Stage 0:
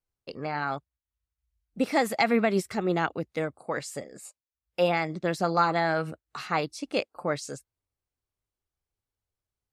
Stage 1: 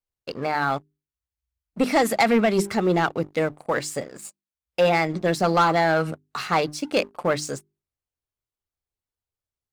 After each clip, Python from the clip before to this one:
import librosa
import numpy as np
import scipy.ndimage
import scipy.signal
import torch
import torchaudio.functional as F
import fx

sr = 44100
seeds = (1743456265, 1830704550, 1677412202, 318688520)

y = fx.hum_notches(x, sr, base_hz=50, count=8)
y = fx.leveller(y, sr, passes=2)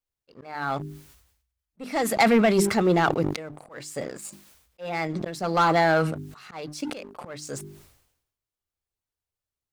y = fx.auto_swell(x, sr, attack_ms=463.0)
y = fx.sustainer(y, sr, db_per_s=71.0)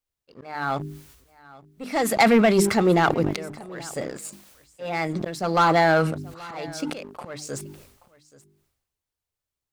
y = x + 10.0 ** (-21.0 / 20.0) * np.pad(x, (int(829 * sr / 1000.0), 0))[:len(x)]
y = y * 10.0 ** (2.0 / 20.0)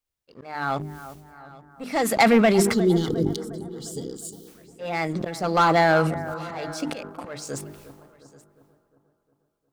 y = fx.spec_box(x, sr, start_s=2.73, length_s=1.74, low_hz=510.0, high_hz=2900.0, gain_db=-23)
y = fx.echo_bbd(y, sr, ms=356, stages=4096, feedback_pct=52, wet_db=-14.5)